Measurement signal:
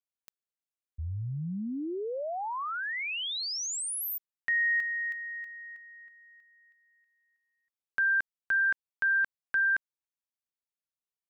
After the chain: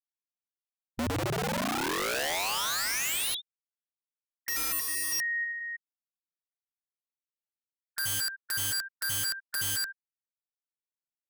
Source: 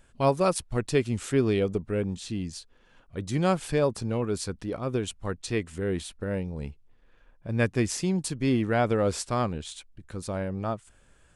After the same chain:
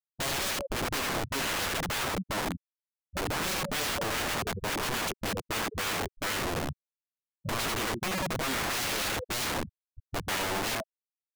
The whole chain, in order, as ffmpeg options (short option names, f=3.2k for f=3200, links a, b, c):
-af "aecho=1:1:78|156|234|312:0.422|0.139|0.0459|0.0152,aresample=8000,asoftclip=type=hard:threshold=-24.5dB,aresample=44100,afftfilt=real='re*gte(hypot(re,im),0.0708)':imag='im*gte(hypot(re,im),0.0708)':win_size=1024:overlap=0.75,aeval=exprs='(mod(44.7*val(0)+1,2)-1)/44.7':c=same,volume=6.5dB"